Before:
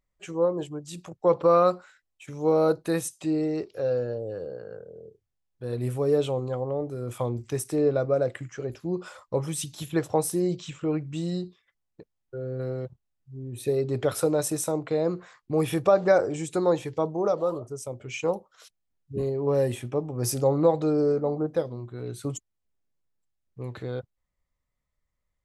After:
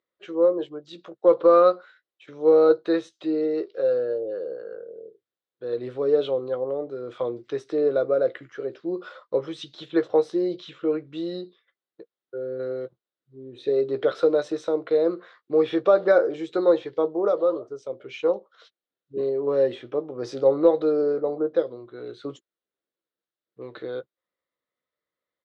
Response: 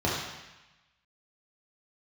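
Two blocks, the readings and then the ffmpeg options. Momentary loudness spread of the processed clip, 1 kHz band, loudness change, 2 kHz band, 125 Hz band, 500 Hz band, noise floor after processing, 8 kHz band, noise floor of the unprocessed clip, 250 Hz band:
18 LU, 0.0 dB, +3.0 dB, +1.5 dB, -14.0 dB, +4.0 dB, under -85 dBFS, under -20 dB, -80 dBFS, +0.5 dB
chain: -filter_complex "[0:a]highpass=330,equalizer=f=340:t=q:w=4:g=6,equalizer=f=490:t=q:w=4:g=6,equalizer=f=860:t=q:w=4:g=-6,equalizer=f=1400:t=q:w=4:g=4,equalizer=f=2500:t=q:w=4:g=-5,equalizer=f=3800:t=q:w=4:g=5,lowpass=f=4100:w=0.5412,lowpass=f=4100:w=1.3066,asplit=2[s0][s1];[s1]adelay=15,volume=0.282[s2];[s0][s2]amix=inputs=2:normalize=0,aeval=exprs='0.501*(cos(1*acos(clip(val(0)/0.501,-1,1)))-cos(1*PI/2))+0.00631*(cos(4*acos(clip(val(0)/0.501,-1,1)))-cos(4*PI/2))+0.00355*(cos(6*acos(clip(val(0)/0.501,-1,1)))-cos(6*PI/2))':c=same"

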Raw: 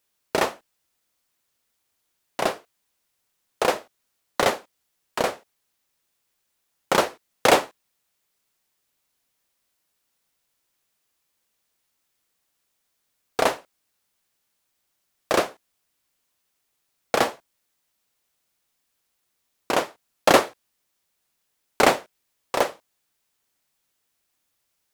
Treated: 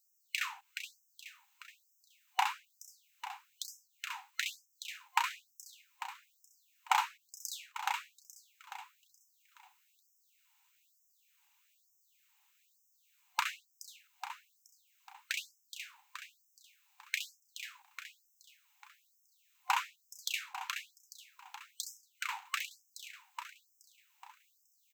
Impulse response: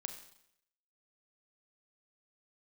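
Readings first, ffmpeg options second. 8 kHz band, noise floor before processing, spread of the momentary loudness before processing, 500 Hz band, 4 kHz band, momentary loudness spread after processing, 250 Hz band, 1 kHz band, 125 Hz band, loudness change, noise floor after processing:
-10.0 dB, -75 dBFS, 16 LU, under -40 dB, -9.5 dB, 21 LU, under -40 dB, -11.5 dB, under -40 dB, -16.0 dB, -74 dBFS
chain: -filter_complex "[0:a]acrossover=split=190[s0][s1];[s1]acompressor=threshold=0.0251:ratio=4[s2];[s0][s2]amix=inputs=2:normalize=0,superequalizer=9b=2.24:12b=1.78:14b=0.631:16b=0.355,asplit=2[s3][s4];[s4]aecho=0:1:423|846|1269|1692|2115|2538:0.473|0.227|0.109|0.0523|0.0251|0.0121[s5];[s3][s5]amix=inputs=2:normalize=0,afftfilt=real='re*gte(b*sr/1024,730*pow(5200/730,0.5+0.5*sin(2*PI*1.1*pts/sr)))':imag='im*gte(b*sr/1024,730*pow(5200/730,0.5+0.5*sin(2*PI*1.1*pts/sr)))':win_size=1024:overlap=0.75,volume=1.33"

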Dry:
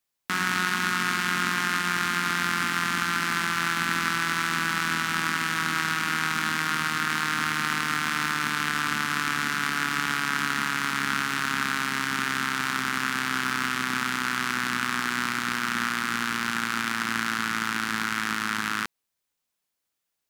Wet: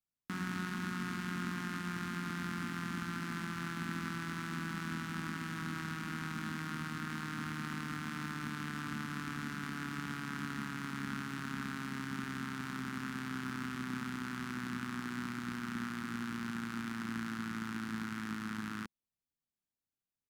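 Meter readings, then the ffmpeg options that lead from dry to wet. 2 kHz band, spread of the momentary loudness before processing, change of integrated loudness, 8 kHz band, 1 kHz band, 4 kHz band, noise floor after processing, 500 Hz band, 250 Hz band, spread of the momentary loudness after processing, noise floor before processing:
-17.0 dB, 2 LU, -14.0 dB, -18.5 dB, -16.0 dB, -18.5 dB, under -85 dBFS, -10.5 dB, -4.5 dB, 2 LU, -82 dBFS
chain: -af "firequalizer=gain_entry='entry(220,0);entry(490,-11);entry(2300,-15)':delay=0.05:min_phase=1,volume=0.668"

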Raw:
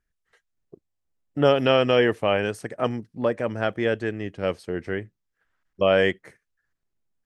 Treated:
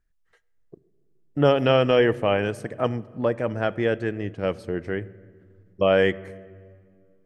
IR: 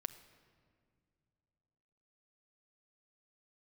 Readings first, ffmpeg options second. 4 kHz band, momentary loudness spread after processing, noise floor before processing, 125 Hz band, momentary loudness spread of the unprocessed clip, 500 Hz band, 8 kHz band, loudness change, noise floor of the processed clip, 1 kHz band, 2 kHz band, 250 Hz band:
-2.0 dB, 13 LU, -80 dBFS, +3.0 dB, 12 LU, +0.5 dB, no reading, +0.5 dB, -66 dBFS, 0.0 dB, -1.0 dB, +1.0 dB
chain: -filter_complex "[0:a]asplit=2[s0][s1];[s1]highshelf=f=3100:g=-11.5[s2];[1:a]atrim=start_sample=2205,lowshelf=f=99:g=11[s3];[s2][s3]afir=irnorm=-1:irlink=0,volume=1.19[s4];[s0][s4]amix=inputs=2:normalize=0,volume=0.562"

